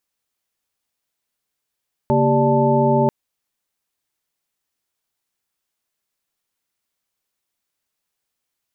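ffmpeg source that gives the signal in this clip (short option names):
-f lavfi -i "aevalsrc='0.106*(sin(2*PI*138.59*t)+sin(2*PI*233.08*t)+sin(2*PI*392*t)+sin(2*PI*587.33*t)+sin(2*PI*880*t))':d=0.99:s=44100"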